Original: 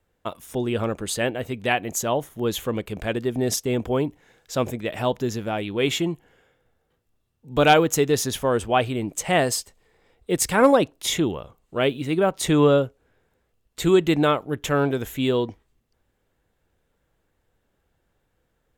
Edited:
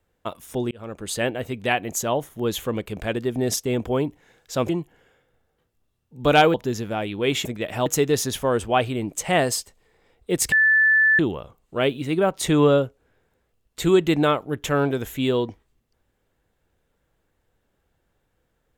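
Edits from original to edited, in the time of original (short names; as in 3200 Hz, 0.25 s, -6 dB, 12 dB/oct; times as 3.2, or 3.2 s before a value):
0.71–1.19 fade in
4.69–5.1 swap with 6.01–7.86
10.52–11.19 bleep 1750 Hz -13.5 dBFS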